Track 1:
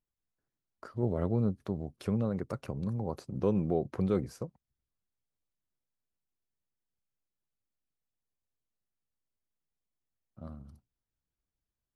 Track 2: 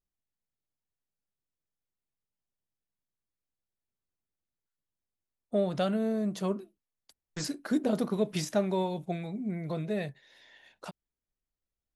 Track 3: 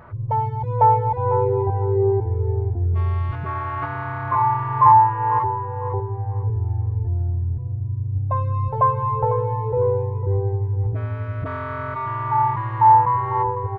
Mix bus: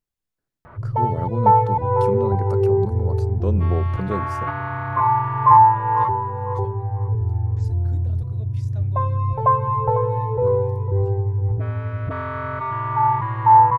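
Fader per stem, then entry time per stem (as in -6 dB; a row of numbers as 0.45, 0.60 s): +3.0, -18.0, +1.0 dB; 0.00, 0.20, 0.65 s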